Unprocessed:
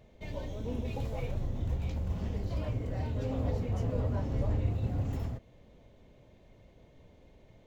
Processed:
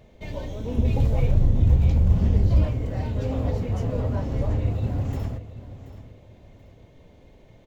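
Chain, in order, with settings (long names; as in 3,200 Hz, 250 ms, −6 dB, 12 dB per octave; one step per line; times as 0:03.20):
0:00.77–0:02.67: low-shelf EQ 270 Hz +10.5 dB
repeating echo 731 ms, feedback 29%, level −15 dB
level +6 dB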